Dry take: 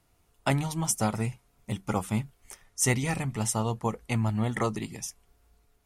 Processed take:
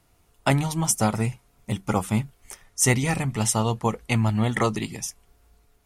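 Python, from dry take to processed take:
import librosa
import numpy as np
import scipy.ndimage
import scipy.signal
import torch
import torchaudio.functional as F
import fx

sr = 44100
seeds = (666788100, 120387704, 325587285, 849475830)

y = fx.dynamic_eq(x, sr, hz=3300.0, q=0.88, threshold_db=-49.0, ratio=4.0, max_db=4, at=(3.26, 4.96))
y = F.gain(torch.from_numpy(y), 5.0).numpy()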